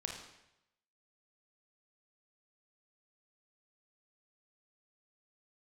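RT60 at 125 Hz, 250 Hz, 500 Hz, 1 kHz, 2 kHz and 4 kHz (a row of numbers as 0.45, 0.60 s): 0.95, 0.80, 0.85, 0.85, 0.85, 0.80 s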